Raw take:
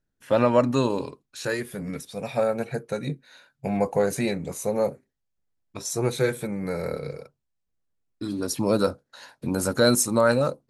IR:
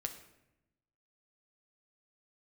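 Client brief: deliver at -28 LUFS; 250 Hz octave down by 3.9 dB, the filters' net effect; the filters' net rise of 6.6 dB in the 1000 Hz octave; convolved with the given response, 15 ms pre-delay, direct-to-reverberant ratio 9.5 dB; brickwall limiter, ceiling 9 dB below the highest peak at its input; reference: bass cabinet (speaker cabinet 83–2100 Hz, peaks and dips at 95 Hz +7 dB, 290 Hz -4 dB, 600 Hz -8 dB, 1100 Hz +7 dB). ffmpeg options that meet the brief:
-filter_complex "[0:a]equalizer=f=250:t=o:g=-3.5,equalizer=f=1k:t=o:g=5,alimiter=limit=-14dB:level=0:latency=1,asplit=2[a][b];[1:a]atrim=start_sample=2205,adelay=15[c];[b][c]afir=irnorm=-1:irlink=0,volume=-9dB[d];[a][d]amix=inputs=2:normalize=0,highpass=f=83:w=0.5412,highpass=f=83:w=1.3066,equalizer=f=95:t=q:w=4:g=7,equalizer=f=290:t=q:w=4:g=-4,equalizer=f=600:t=q:w=4:g=-8,equalizer=f=1.1k:t=q:w=4:g=7,lowpass=f=2.1k:w=0.5412,lowpass=f=2.1k:w=1.3066,volume=1dB"

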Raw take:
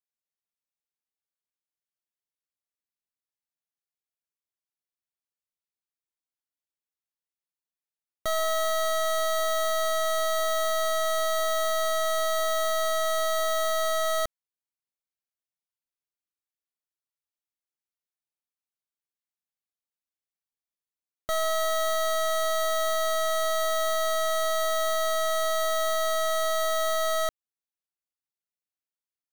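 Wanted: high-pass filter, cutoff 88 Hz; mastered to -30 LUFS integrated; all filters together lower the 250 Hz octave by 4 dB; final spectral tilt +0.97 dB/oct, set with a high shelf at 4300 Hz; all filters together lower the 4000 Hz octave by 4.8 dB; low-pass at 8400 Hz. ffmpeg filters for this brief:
-af "highpass=88,lowpass=8.4k,equalizer=f=250:t=o:g=-4.5,equalizer=f=4k:t=o:g=-4,highshelf=f=4.3k:g=-3,volume=-2dB"

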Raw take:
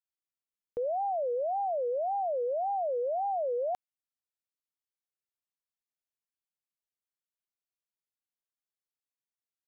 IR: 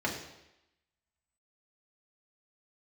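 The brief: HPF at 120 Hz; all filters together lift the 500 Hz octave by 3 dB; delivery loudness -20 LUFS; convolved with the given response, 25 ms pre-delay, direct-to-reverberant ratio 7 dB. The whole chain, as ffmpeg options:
-filter_complex "[0:a]highpass=120,equalizer=f=500:t=o:g=3.5,asplit=2[a][b];[1:a]atrim=start_sample=2205,adelay=25[c];[b][c]afir=irnorm=-1:irlink=0,volume=-15dB[d];[a][d]amix=inputs=2:normalize=0,volume=8dB"

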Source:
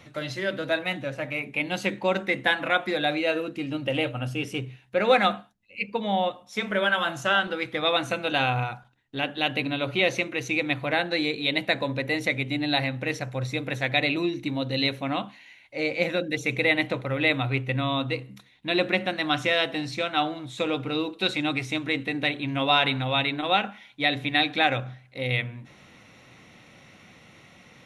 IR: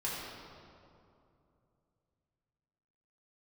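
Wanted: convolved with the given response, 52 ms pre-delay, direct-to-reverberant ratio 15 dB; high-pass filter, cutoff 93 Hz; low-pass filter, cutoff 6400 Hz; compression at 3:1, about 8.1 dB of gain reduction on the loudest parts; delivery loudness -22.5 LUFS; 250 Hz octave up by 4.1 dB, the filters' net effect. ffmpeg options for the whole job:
-filter_complex "[0:a]highpass=93,lowpass=6.4k,equalizer=f=250:t=o:g=5.5,acompressor=threshold=-24dB:ratio=3,asplit=2[a][b];[1:a]atrim=start_sample=2205,adelay=52[c];[b][c]afir=irnorm=-1:irlink=0,volume=-19.5dB[d];[a][d]amix=inputs=2:normalize=0,volume=6dB"

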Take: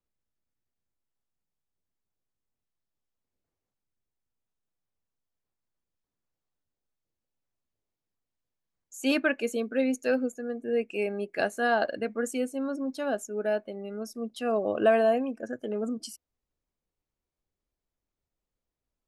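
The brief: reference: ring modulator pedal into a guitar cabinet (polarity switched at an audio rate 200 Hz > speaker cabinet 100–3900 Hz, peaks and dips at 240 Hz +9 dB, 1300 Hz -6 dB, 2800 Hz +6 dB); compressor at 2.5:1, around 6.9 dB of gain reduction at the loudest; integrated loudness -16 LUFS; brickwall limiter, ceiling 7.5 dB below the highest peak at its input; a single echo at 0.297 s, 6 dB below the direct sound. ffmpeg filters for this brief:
-af "acompressor=threshold=-27dB:ratio=2.5,alimiter=limit=-24dB:level=0:latency=1,aecho=1:1:297:0.501,aeval=exprs='val(0)*sgn(sin(2*PI*200*n/s))':c=same,highpass=100,equalizer=f=240:t=q:w=4:g=9,equalizer=f=1.3k:t=q:w=4:g=-6,equalizer=f=2.8k:t=q:w=4:g=6,lowpass=f=3.9k:w=0.5412,lowpass=f=3.9k:w=1.3066,volume=16.5dB"

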